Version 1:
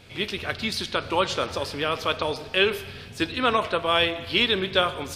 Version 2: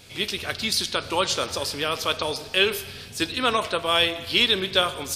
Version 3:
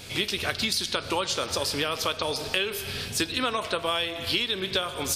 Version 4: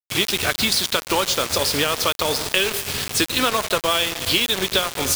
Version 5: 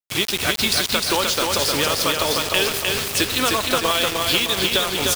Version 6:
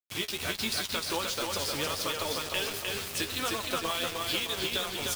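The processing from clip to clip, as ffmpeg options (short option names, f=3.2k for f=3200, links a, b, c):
-af "bass=f=250:g=-1,treble=f=4k:g=12,volume=-1dB"
-af "acompressor=threshold=-30dB:ratio=10,volume=6.5dB"
-af "acrusher=bits=4:mix=0:aa=0.000001,volume=6.5dB"
-af "aecho=1:1:305|610|915|1220|1525|1830:0.668|0.327|0.16|0.0786|0.0385|0.0189,volume=-1dB"
-af "flanger=delay=8.3:depth=5.1:regen=36:speed=1.4:shape=triangular,volume=-8dB"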